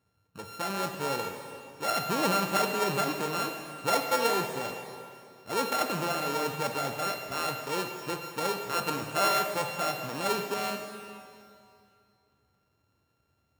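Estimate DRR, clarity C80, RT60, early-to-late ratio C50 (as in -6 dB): 4.0 dB, 6.5 dB, 2.5 s, 5.0 dB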